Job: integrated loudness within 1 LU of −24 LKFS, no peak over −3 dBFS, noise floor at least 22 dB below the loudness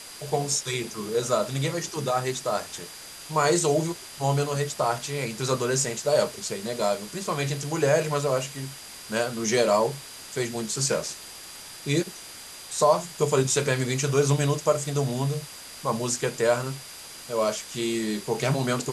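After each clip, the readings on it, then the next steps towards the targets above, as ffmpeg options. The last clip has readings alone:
interfering tone 4,800 Hz; level of the tone −47 dBFS; background noise floor −43 dBFS; target noise floor −48 dBFS; integrated loudness −26.0 LKFS; sample peak −8.5 dBFS; target loudness −24.0 LKFS
→ -af "bandreject=frequency=4800:width=30"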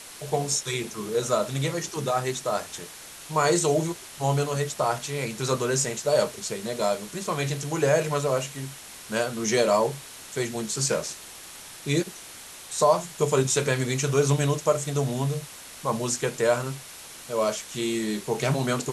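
interfering tone none found; background noise floor −43 dBFS; target noise floor −48 dBFS
→ -af "afftdn=noise_reduction=6:noise_floor=-43"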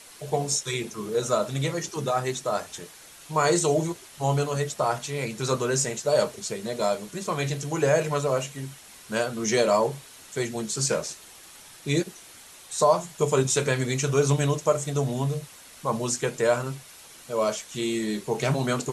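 background noise floor −48 dBFS; target noise floor −49 dBFS
→ -af "afftdn=noise_reduction=6:noise_floor=-48"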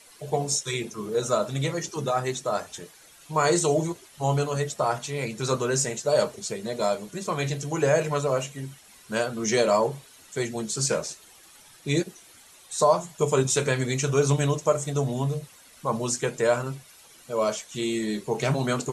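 background noise floor −52 dBFS; integrated loudness −26.5 LKFS; sample peak −8.5 dBFS; target loudness −24.0 LKFS
→ -af "volume=2.5dB"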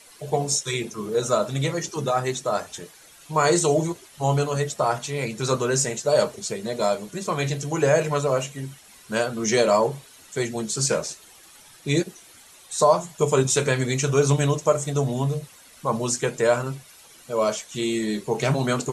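integrated loudness −24.0 LKFS; sample peak −6.0 dBFS; background noise floor −50 dBFS

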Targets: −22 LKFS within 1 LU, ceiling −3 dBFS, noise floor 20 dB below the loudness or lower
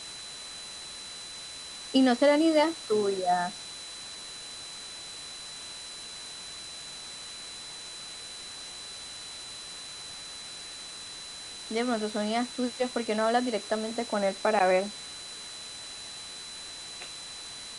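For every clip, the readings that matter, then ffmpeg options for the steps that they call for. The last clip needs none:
interfering tone 4,000 Hz; level of the tone −42 dBFS; background noise floor −42 dBFS; target noise floor −52 dBFS; integrated loudness −31.5 LKFS; sample peak −11.0 dBFS; target loudness −22.0 LKFS
→ -af "bandreject=frequency=4000:width=30"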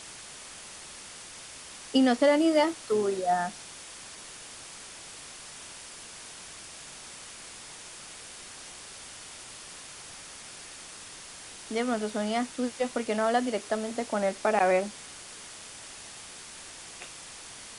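interfering tone none found; background noise floor −46 dBFS; target noise floor −48 dBFS
→ -af "afftdn=noise_reduction=6:noise_floor=-46"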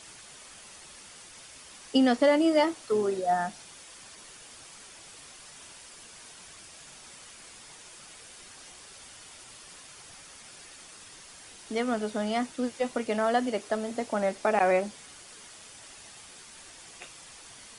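background noise floor −50 dBFS; integrated loudness −27.5 LKFS; sample peak −11.0 dBFS; target loudness −22.0 LKFS
→ -af "volume=5.5dB"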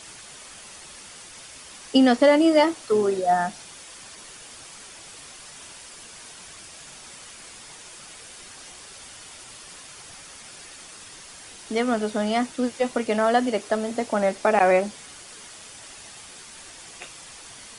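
integrated loudness −22.0 LKFS; sample peak −5.5 dBFS; background noise floor −44 dBFS

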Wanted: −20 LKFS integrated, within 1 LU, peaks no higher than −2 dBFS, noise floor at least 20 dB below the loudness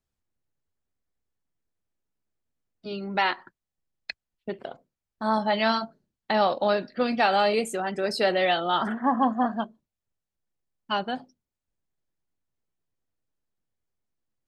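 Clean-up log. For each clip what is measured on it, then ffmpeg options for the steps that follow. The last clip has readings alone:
integrated loudness −25.5 LKFS; sample peak −9.0 dBFS; target loudness −20.0 LKFS
→ -af "volume=5.5dB"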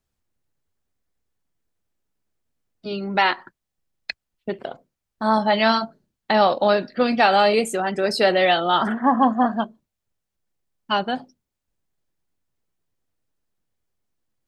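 integrated loudness −20.0 LKFS; sample peak −3.5 dBFS; background noise floor −82 dBFS

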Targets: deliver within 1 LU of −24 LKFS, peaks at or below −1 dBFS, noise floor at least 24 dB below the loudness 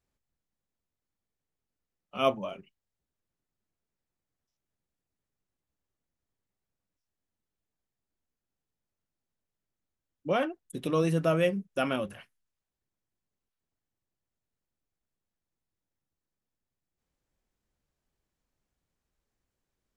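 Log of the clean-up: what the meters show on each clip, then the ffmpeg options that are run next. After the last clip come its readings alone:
integrated loudness −29.5 LKFS; sample peak −12.0 dBFS; target loudness −24.0 LKFS
→ -af "volume=5.5dB"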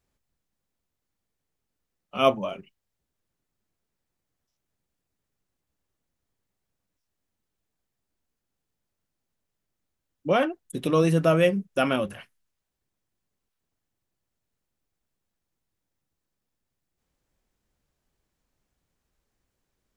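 integrated loudness −24.0 LKFS; sample peak −6.5 dBFS; background noise floor −83 dBFS

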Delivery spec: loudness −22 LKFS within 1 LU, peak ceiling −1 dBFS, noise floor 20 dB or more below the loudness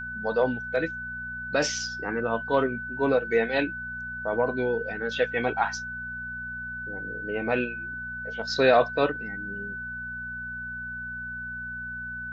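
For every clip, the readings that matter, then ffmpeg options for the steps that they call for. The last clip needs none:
mains hum 60 Hz; hum harmonics up to 240 Hz; level of the hum −42 dBFS; interfering tone 1,500 Hz; level of the tone −33 dBFS; integrated loudness −28.5 LKFS; sample peak −8.5 dBFS; target loudness −22.0 LKFS
→ -af "bandreject=frequency=60:width_type=h:width=4,bandreject=frequency=120:width_type=h:width=4,bandreject=frequency=180:width_type=h:width=4,bandreject=frequency=240:width_type=h:width=4"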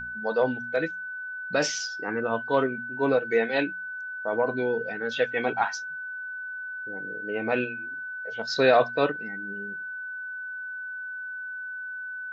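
mains hum none found; interfering tone 1,500 Hz; level of the tone −33 dBFS
→ -af "bandreject=frequency=1500:width=30"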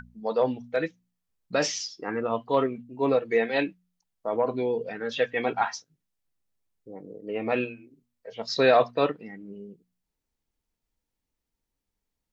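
interfering tone none found; integrated loudness −27.0 LKFS; sample peak −8.5 dBFS; target loudness −22.0 LKFS
→ -af "volume=5dB"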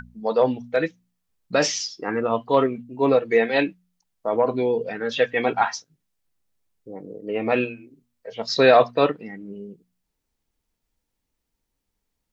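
integrated loudness −22.0 LKFS; sample peak −3.5 dBFS; background noise floor −79 dBFS

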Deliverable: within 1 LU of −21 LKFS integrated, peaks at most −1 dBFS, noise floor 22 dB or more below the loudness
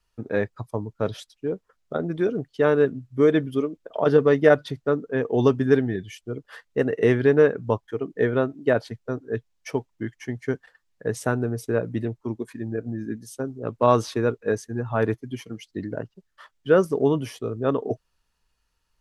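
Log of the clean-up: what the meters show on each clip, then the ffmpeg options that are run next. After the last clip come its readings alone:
integrated loudness −24.5 LKFS; sample peak −2.5 dBFS; target loudness −21.0 LKFS
→ -af "volume=3.5dB,alimiter=limit=-1dB:level=0:latency=1"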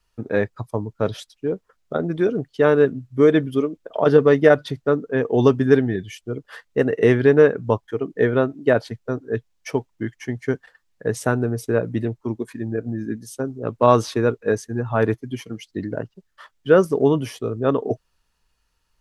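integrated loudness −21.0 LKFS; sample peak −1.0 dBFS; background noise floor −70 dBFS

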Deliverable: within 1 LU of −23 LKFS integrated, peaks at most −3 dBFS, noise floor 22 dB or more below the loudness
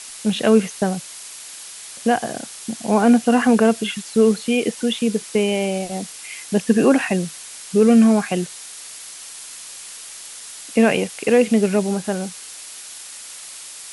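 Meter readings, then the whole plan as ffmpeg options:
background noise floor −37 dBFS; target noise floor −41 dBFS; integrated loudness −19.0 LKFS; sample peak −2.5 dBFS; target loudness −23.0 LKFS
→ -af "afftdn=noise_reduction=6:noise_floor=-37"
-af "volume=-4dB"

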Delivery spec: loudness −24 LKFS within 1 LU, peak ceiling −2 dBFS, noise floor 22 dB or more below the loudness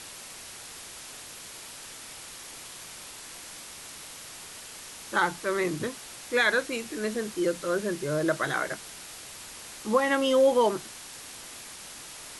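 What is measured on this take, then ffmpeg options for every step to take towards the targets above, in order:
background noise floor −44 dBFS; target noise floor −49 dBFS; integrated loudness −27.0 LKFS; sample peak −11.0 dBFS; target loudness −24.0 LKFS
→ -af "afftdn=noise_reduction=6:noise_floor=-44"
-af "volume=3dB"

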